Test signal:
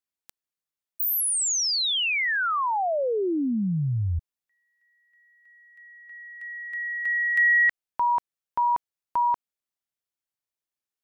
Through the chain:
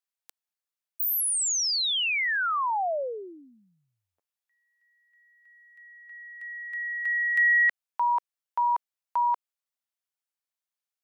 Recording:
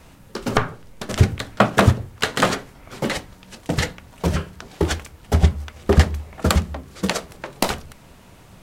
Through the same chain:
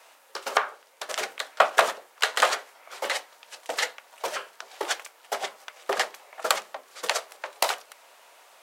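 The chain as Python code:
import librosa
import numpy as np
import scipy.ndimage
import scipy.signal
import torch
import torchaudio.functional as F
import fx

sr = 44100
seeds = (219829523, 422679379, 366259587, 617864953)

y = scipy.signal.sosfilt(scipy.signal.butter(4, 560.0, 'highpass', fs=sr, output='sos'), x)
y = y * librosa.db_to_amplitude(-1.5)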